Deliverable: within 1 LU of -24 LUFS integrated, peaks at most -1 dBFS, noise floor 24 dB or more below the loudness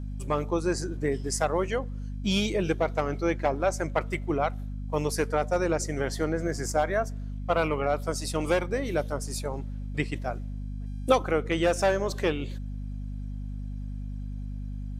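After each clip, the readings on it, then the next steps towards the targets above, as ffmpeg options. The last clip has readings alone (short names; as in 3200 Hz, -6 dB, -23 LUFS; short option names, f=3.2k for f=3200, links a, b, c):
hum 50 Hz; harmonics up to 250 Hz; hum level -32 dBFS; loudness -29.0 LUFS; peak -9.0 dBFS; loudness target -24.0 LUFS
-> -af "bandreject=f=50:t=h:w=6,bandreject=f=100:t=h:w=6,bandreject=f=150:t=h:w=6,bandreject=f=200:t=h:w=6,bandreject=f=250:t=h:w=6"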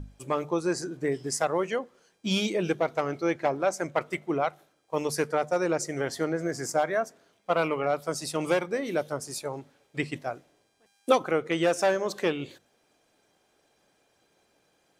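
hum none; loudness -29.0 LUFS; peak -8.5 dBFS; loudness target -24.0 LUFS
-> -af "volume=5dB"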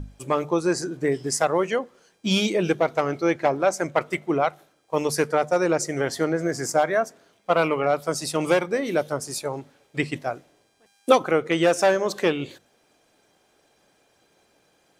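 loudness -24.0 LUFS; peak -3.5 dBFS; noise floor -64 dBFS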